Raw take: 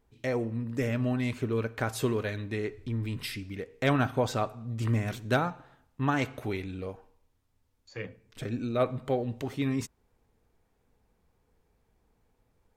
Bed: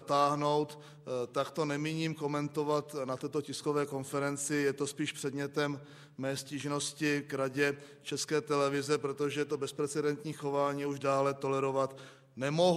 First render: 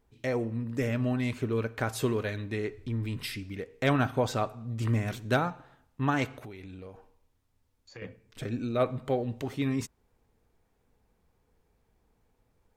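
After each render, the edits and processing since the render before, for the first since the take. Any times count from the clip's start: 6.26–8.02 s: compression 10:1, threshold -40 dBFS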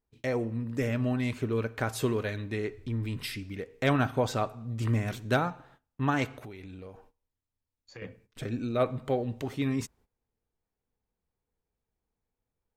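gate -58 dBFS, range -16 dB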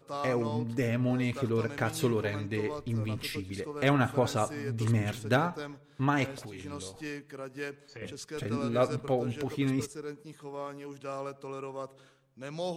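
add bed -8 dB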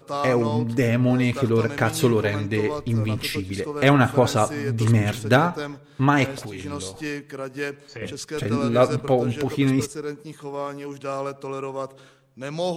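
trim +9 dB

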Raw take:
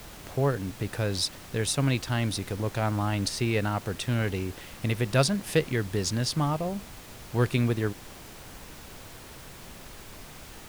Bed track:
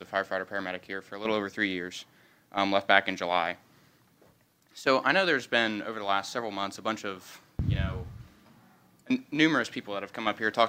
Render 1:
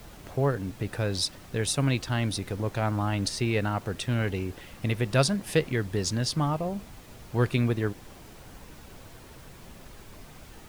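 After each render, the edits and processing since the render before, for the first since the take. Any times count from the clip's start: noise reduction 6 dB, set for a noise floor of -46 dBFS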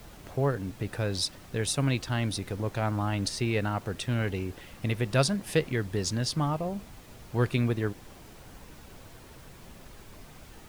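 trim -1.5 dB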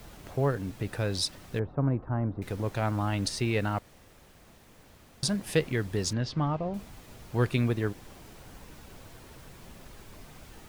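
1.59–2.42 s: low-pass 1.2 kHz 24 dB/octave; 3.79–5.23 s: room tone; 6.13–6.74 s: distance through air 190 m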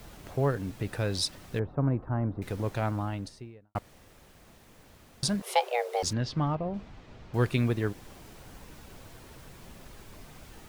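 2.65–3.75 s: studio fade out; 5.42–6.03 s: frequency shift +360 Hz; 6.55–7.34 s: distance through air 160 m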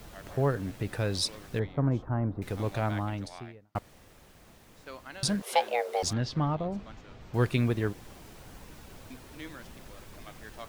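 add bed track -21 dB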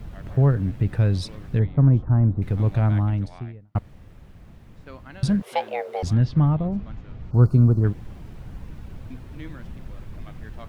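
7.31–7.84 s: time-frequency box 1.5–4.1 kHz -22 dB; tone controls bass +14 dB, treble -10 dB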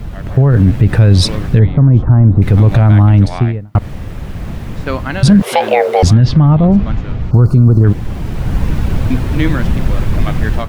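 level rider gain up to 11.5 dB; loudness maximiser +12.5 dB

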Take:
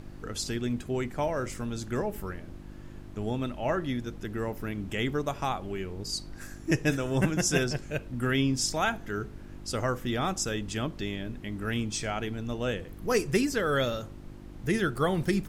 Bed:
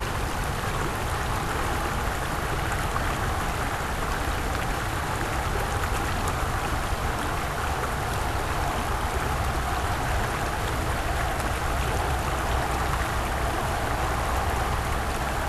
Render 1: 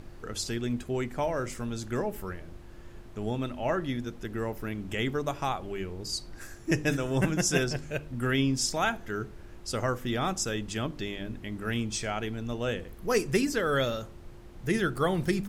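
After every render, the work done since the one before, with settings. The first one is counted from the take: de-hum 50 Hz, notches 6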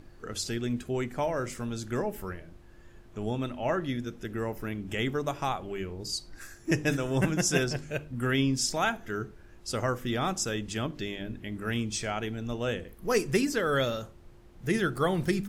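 noise print and reduce 6 dB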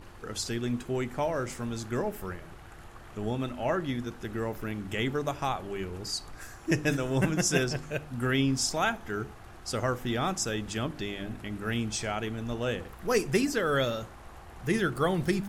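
add bed -23.5 dB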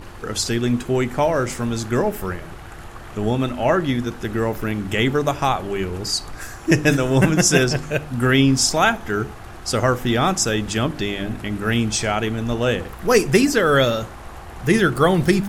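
trim +11 dB; peak limiter -3 dBFS, peak gain reduction 1.5 dB

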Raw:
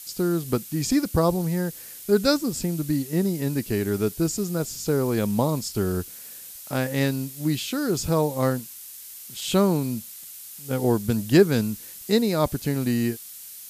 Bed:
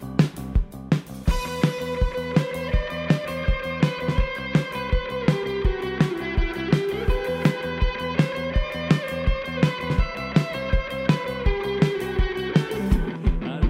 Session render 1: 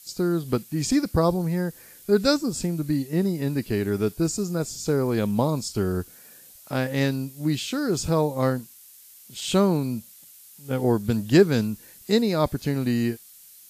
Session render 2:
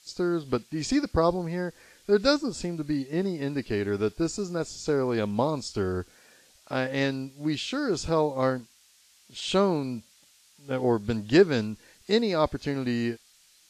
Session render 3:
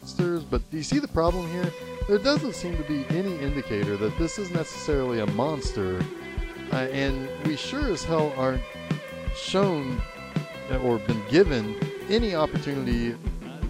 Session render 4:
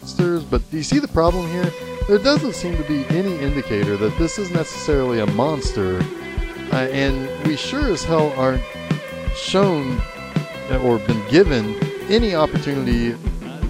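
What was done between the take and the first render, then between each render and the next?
noise print and reduce 8 dB
low-pass 5.3 kHz 12 dB/octave; peaking EQ 150 Hz -8 dB 1.5 oct
add bed -9 dB
trim +7 dB; peak limiter -3 dBFS, peak gain reduction 2 dB

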